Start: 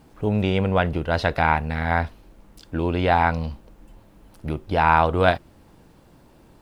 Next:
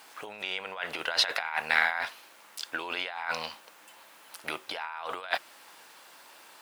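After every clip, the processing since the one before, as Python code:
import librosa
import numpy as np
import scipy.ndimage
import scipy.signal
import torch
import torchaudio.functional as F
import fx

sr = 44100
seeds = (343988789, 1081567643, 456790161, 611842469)

y = fx.over_compress(x, sr, threshold_db=-25.0, ratio=-0.5)
y = scipy.signal.sosfilt(scipy.signal.butter(2, 1300.0, 'highpass', fs=sr, output='sos'), y)
y = F.gain(torch.from_numpy(y), 6.5).numpy()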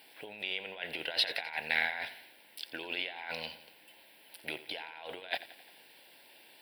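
y = fx.fixed_phaser(x, sr, hz=2900.0, stages=4)
y = fx.echo_feedback(y, sr, ms=87, feedback_pct=55, wet_db=-15.5)
y = F.gain(torch.from_numpy(y), -1.5).numpy()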